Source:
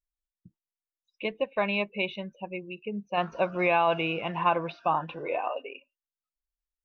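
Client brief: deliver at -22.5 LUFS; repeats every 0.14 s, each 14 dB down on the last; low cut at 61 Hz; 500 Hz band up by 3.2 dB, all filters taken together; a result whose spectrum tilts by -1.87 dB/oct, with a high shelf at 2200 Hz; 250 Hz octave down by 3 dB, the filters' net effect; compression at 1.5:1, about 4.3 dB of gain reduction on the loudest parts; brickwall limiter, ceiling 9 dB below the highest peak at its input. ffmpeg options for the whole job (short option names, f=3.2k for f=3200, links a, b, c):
-af "highpass=61,equalizer=f=250:t=o:g=-7.5,equalizer=f=500:t=o:g=5,highshelf=f=2.2k:g=7.5,acompressor=threshold=-28dB:ratio=1.5,alimiter=limit=-22.5dB:level=0:latency=1,aecho=1:1:140|280:0.2|0.0399,volume=11dB"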